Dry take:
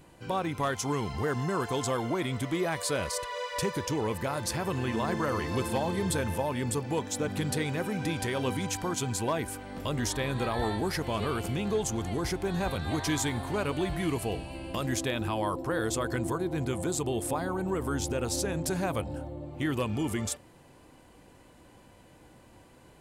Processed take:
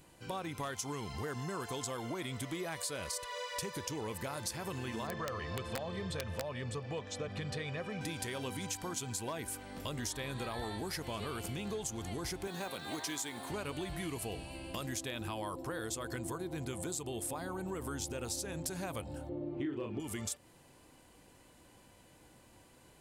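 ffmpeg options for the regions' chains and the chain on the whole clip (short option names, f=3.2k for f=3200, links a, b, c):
-filter_complex "[0:a]asettb=1/sr,asplit=3[a][b][c];[a]atrim=end=5.074[d];[b]atrim=start=5.07:end=8.01,asetpts=PTS-STARTPTS,afade=t=in:d=0.004:c=qsin,afade=t=out:st=2.936:d=0.004:c=qsin,lowpass=3.7k,aecho=1:1:1.7:0.52,atrim=end_sample=129654,aeval=exprs='(mod(8.41*val(0)+1,2)-1)/8.41':c=same[e];[c]atrim=start=8.006[f];[d][e]acrossfade=d=0.004:c1=hsin:c2=qsin[g];[g][f]acrossfade=d=0.004:c1=qsin:c2=hsin,asettb=1/sr,asplit=3[h][i][j];[h]atrim=end=12.474[k];[i]atrim=start=12.47:end=13.5,asetpts=PTS-STARTPTS,afade=t=in:d=0.004:c=qsin,afade=t=out:st=1.026:d=0.004:c=qsin,highpass=230,acrusher=bits=7:mode=log:mix=0:aa=0.000001[l];[j]atrim=start=13.496[m];[k][l]acrossfade=d=0.004:c1=hsin:c2=qsin[n];[n][m]acrossfade=d=0.004:c1=qsin:c2=hsin,asettb=1/sr,asplit=3[o][p][q];[o]atrim=end=19.294[r];[p]atrim=start=19.29:end=20,asetpts=PTS-STARTPTS,afade=t=in:d=0.004:c=qsin,afade=t=out:st=0.706:d=0.004:c=qsin,lowpass=2.9k,equalizer=f=350:w=1.5:g=13,asplit=2[s][t];[t]adelay=35,volume=-5dB[u];[s][u]amix=inputs=2:normalize=0,atrim=end_sample=31311[v];[q]atrim=start=19.996[w];[r][v]acrossfade=d=0.004:c1=hsin:c2=qsin[x];[x][w]acrossfade=d=0.004:c1=qsin:c2=hsin,highshelf=f=2.8k:g=8,acompressor=threshold=-29dB:ratio=6,volume=-6.5dB"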